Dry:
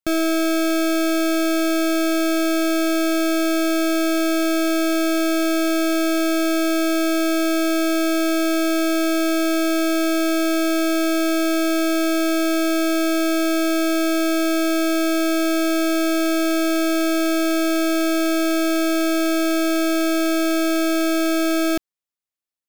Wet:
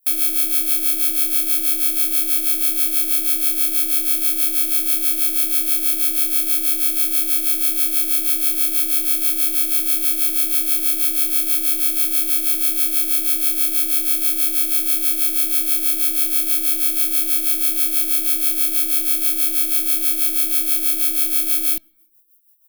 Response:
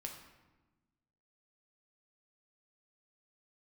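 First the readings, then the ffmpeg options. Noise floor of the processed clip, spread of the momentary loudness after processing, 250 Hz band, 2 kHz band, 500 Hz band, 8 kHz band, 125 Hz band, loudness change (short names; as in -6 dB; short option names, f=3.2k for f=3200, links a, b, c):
-24 dBFS, 1 LU, -18.0 dB, -9.0 dB, -19.0 dB, +8.5 dB, n/a, +4.5 dB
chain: -filter_complex "[0:a]tiltshelf=f=1.2k:g=-7.5,volume=23dB,asoftclip=hard,volume=-23dB,aexciter=amount=5.3:drive=4.9:freq=2.4k,acrossover=split=470[a][b];[a]aeval=exprs='val(0)*(1-0.7/2+0.7/2*cos(2*PI*6.2*n/s))':c=same[c];[b]aeval=exprs='val(0)*(1-0.7/2-0.7/2*cos(2*PI*6.2*n/s))':c=same[d];[c][d]amix=inputs=2:normalize=0,aecho=1:1:4.1:0.49,aexciter=amount=4.4:drive=8.6:freq=9.5k,asplit=2[e][f];[1:a]atrim=start_sample=2205,asetrate=70560,aresample=44100,lowpass=3.9k[g];[f][g]afir=irnorm=-1:irlink=0,volume=-11dB[h];[e][h]amix=inputs=2:normalize=0,volume=-7dB"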